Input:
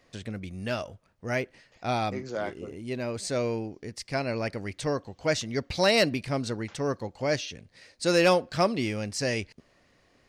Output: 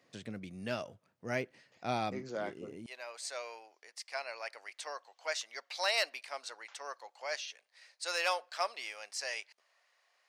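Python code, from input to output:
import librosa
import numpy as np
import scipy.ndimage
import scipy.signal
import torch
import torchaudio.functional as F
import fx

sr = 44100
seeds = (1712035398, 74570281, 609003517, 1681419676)

y = fx.highpass(x, sr, hz=fx.steps((0.0, 120.0), (2.86, 710.0)), slope=24)
y = y * librosa.db_to_amplitude(-6.0)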